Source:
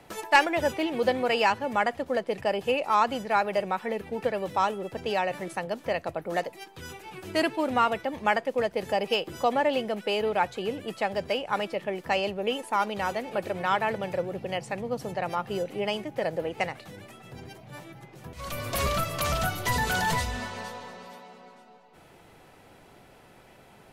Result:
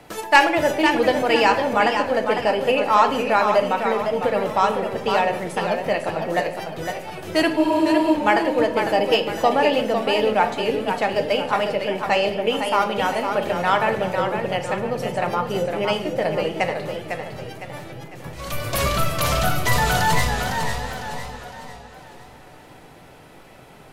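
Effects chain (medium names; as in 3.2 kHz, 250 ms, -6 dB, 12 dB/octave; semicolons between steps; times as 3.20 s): simulated room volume 200 m³, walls mixed, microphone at 0.46 m; spectral freeze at 7.60 s, 0.54 s; modulated delay 505 ms, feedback 42%, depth 101 cents, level -6.5 dB; trim +5.5 dB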